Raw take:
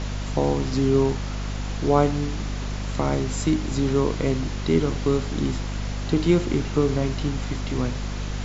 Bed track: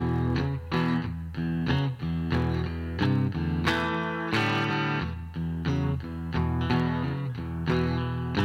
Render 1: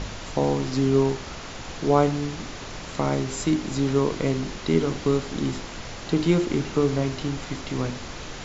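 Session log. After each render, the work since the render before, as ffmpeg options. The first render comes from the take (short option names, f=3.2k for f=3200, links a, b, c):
-af "bandreject=f=50:t=h:w=4,bandreject=f=100:t=h:w=4,bandreject=f=150:t=h:w=4,bandreject=f=200:t=h:w=4,bandreject=f=250:t=h:w=4,bandreject=f=300:t=h:w=4,bandreject=f=350:t=h:w=4,bandreject=f=400:t=h:w=4"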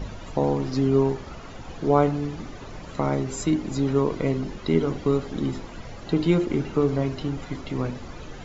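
-af "afftdn=nr=12:nf=-37"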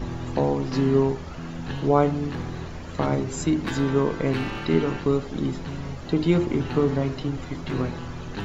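-filter_complex "[1:a]volume=-7dB[a];[0:a][a]amix=inputs=2:normalize=0"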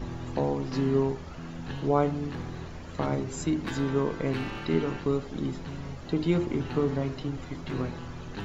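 -af "volume=-5dB"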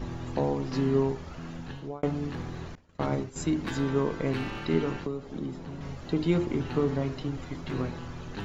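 -filter_complex "[0:a]asettb=1/sr,asplit=3[a][b][c];[a]atrim=end=2.754[d];[b]atrim=start=2.75:end=3.36,asetpts=PTS-STARTPTS,afade=t=in:d=0.004:c=qsin,afade=t=out:st=0.606:d=0.004:c=qsin,agate=range=-33dB:threshold=-29dB:ratio=3:release=100:detection=peak[e];[c]atrim=start=3.356[f];[d][e]acrossfade=d=0.004:c1=hsin:c2=qsin[g];[g][f]acrossfade=d=0.004:c1=qsin:c2=hsin,asettb=1/sr,asplit=3[h][i][j];[h]atrim=end=5.054[k];[i]atrim=start=5.05:end=5.81,asetpts=PTS-STARTPTS,afade=t=in:d=0.004:c=qsin,afade=t=out:st=0.756:d=0.004:c=qsin,acrossover=split=130|1100[l][m][n];[l]acompressor=threshold=-47dB:ratio=4[o];[m]acompressor=threshold=-31dB:ratio=4[p];[n]acompressor=threshold=-56dB:ratio=4[q];[o][p][q]amix=inputs=3:normalize=0[r];[j]atrim=start=5.806[s];[k][r]acrossfade=d=0.004:c1=hsin:c2=qsin[t];[t][s]acrossfade=d=0.004:c1=qsin:c2=hsin,asplit=2[u][v];[u]atrim=end=2.03,asetpts=PTS-STARTPTS,afade=t=out:st=1.54:d=0.49[w];[v]atrim=start=2.03,asetpts=PTS-STARTPTS,afade=t=in:d=0.004:c=hsin[x];[w][x]concat=n=2:v=0:a=1"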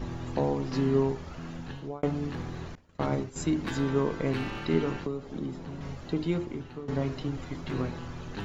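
-filter_complex "[0:a]asplit=2[a][b];[a]atrim=end=6.88,asetpts=PTS-STARTPTS,afade=t=out:st=5.91:d=0.97:silence=0.133352[c];[b]atrim=start=6.88,asetpts=PTS-STARTPTS,afade=t=in:d=0.004:c=hsin:silence=0.133352[d];[c][d]concat=n=2:v=0:a=1"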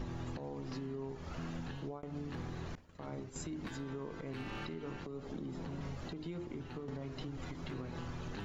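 -af "acompressor=threshold=-36dB:ratio=4,alimiter=level_in=9dB:limit=-24dB:level=0:latency=1:release=169,volume=-9dB"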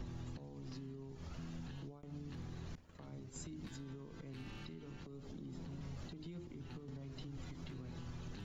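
-filter_complex "[0:a]alimiter=level_in=13dB:limit=-24dB:level=0:latency=1:release=203,volume=-13dB,acrossover=split=260|3000[a][b][c];[b]acompressor=threshold=-57dB:ratio=6[d];[a][d][c]amix=inputs=3:normalize=0"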